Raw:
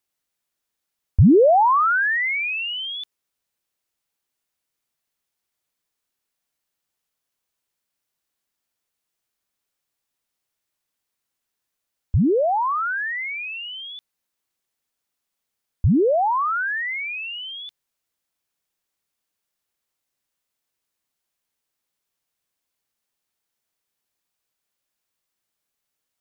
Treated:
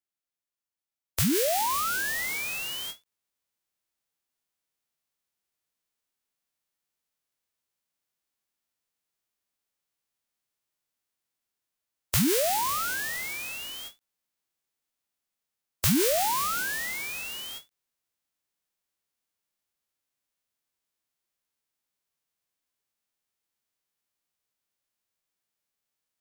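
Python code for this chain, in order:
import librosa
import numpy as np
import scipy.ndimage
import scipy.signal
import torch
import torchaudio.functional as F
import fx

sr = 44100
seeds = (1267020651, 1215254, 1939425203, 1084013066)

y = fx.envelope_flatten(x, sr, power=0.1)
y = fx.rider(y, sr, range_db=4, speed_s=2.0)
y = fx.end_taper(y, sr, db_per_s=310.0)
y = F.gain(torch.from_numpy(y), -8.5).numpy()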